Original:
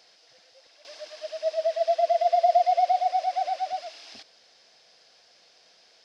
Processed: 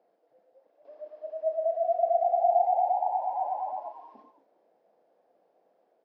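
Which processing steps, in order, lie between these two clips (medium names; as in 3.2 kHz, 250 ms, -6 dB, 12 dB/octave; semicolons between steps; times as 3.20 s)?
ever faster or slower copies 542 ms, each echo +2 st, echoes 3, each echo -6 dB; Butterworth band-pass 390 Hz, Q 0.79; doubling 33 ms -8 dB; trim -1 dB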